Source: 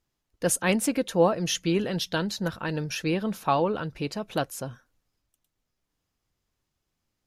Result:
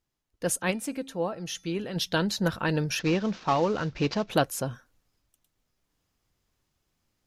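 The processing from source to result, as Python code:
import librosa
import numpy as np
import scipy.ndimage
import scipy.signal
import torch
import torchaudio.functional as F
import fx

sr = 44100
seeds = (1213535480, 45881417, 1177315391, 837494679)

y = fx.cvsd(x, sr, bps=32000, at=(2.99, 4.3))
y = fx.rider(y, sr, range_db=10, speed_s=0.5)
y = fx.comb_fb(y, sr, f0_hz=270.0, decay_s=0.49, harmonics='odd', damping=0.0, mix_pct=50, at=(0.7, 1.95), fade=0.02)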